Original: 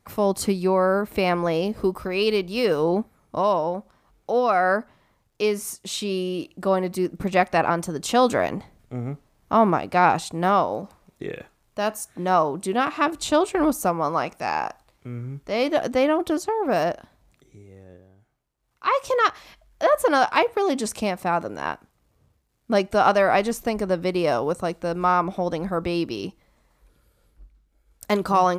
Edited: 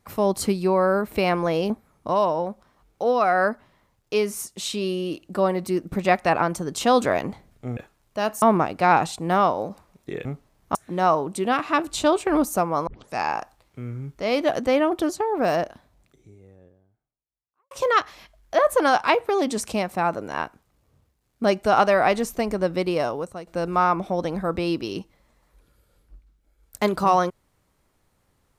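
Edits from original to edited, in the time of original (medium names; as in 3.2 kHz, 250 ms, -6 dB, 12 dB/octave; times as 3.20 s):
1.70–2.98 s: delete
9.05–9.55 s: swap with 11.38–12.03 s
14.15 s: tape start 0.27 s
16.92–18.99 s: studio fade out
24.11–24.75 s: fade out, to -13.5 dB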